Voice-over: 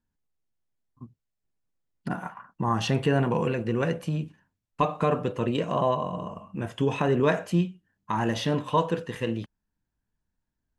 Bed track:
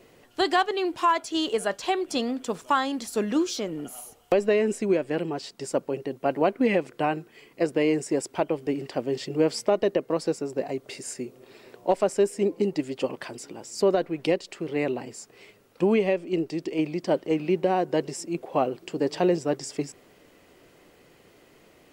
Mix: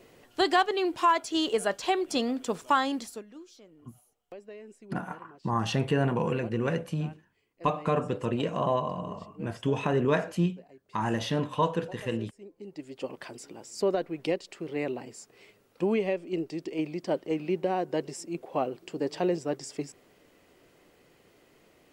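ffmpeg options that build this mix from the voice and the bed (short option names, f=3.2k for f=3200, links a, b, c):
-filter_complex "[0:a]adelay=2850,volume=-2.5dB[a];[1:a]volume=17.5dB,afade=t=out:st=2.93:d=0.3:silence=0.0749894,afade=t=in:st=12.58:d=0.7:silence=0.11885[b];[a][b]amix=inputs=2:normalize=0"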